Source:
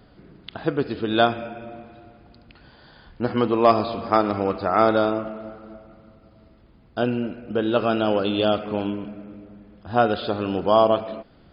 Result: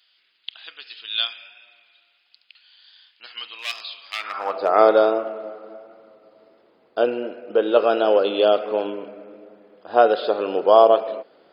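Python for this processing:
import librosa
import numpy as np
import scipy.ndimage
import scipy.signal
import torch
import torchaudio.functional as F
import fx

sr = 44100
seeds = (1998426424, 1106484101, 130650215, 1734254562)

y = fx.vibrato(x, sr, rate_hz=1.4, depth_cents=28.0)
y = fx.clip_hard(y, sr, threshold_db=-13.5, at=(3.57, 4.68), fade=0.02)
y = fx.filter_sweep_highpass(y, sr, from_hz=3000.0, to_hz=470.0, start_s=4.13, end_s=4.63, q=2.2)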